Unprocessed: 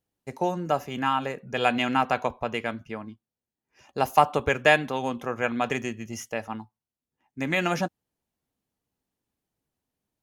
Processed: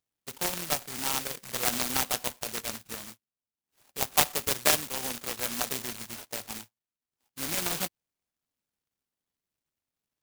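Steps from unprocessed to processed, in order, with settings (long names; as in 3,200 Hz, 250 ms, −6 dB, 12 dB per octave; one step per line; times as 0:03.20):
loose part that buzzes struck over −42 dBFS, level −26 dBFS
0:03.01–0:04.12: high-frequency loss of the air 180 metres
bad sample-rate conversion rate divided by 6×, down none, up zero stuff
short delay modulated by noise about 1,800 Hz, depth 0.11 ms
level −11.5 dB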